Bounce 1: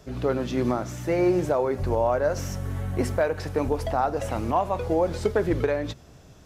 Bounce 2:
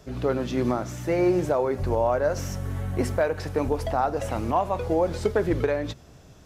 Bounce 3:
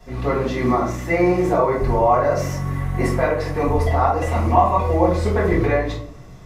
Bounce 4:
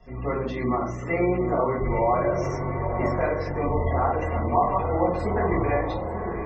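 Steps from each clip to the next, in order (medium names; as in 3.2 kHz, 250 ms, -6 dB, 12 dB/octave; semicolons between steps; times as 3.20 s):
no audible change
small resonant body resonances 1.1/2 kHz, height 13 dB, ringing for 30 ms; reverberation RT60 0.55 s, pre-delay 3 ms, DRR -7.5 dB; trim -8.5 dB
echo that smears into a reverb 901 ms, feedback 53%, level -6.5 dB; spectral gate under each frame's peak -30 dB strong; trim -6.5 dB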